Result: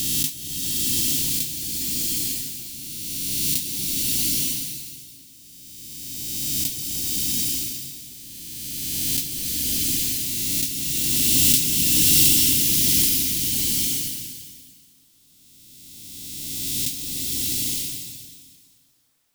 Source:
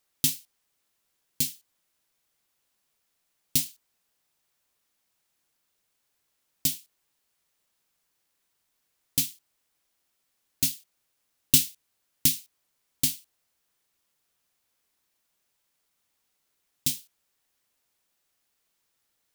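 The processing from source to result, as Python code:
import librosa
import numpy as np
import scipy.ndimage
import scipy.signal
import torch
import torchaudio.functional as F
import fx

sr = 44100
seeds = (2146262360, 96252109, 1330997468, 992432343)

y = fx.spec_swells(x, sr, rise_s=2.85)
y = fx.rev_bloom(y, sr, seeds[0], attack_ms=920, drr_db=-4.0)
y = F.gain(torch.from_numpy(y), -3.5).numpy()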